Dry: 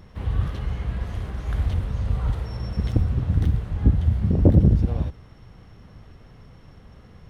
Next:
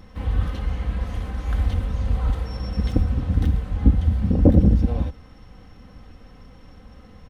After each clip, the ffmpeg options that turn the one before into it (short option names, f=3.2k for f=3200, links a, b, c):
-af "aecho=1:1:3.9:0.58,volume=1dB"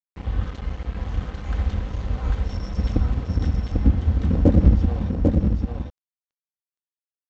-af "aresample=16000,aeval=exprs='sgn(val(0))*max(abs(val(0))-0.0237,0)':c=same,aresample=44100,aecho=1:1:795:0.708,volume=-1dB"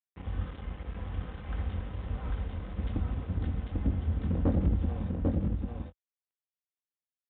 -filter_complex "[0:a]highpass=50,aresample=8000,asoftclip=type=tanh:threshold=-11.5dB,aresample=44100,asplit=2[a][b];[b]adelay=22,volume=-10.5dB[c];[a][c]amix=inputs=2:normalize=0,volume=-8dB"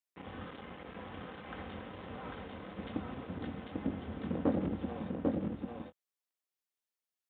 -af "highpass=240,volume=1.5dB"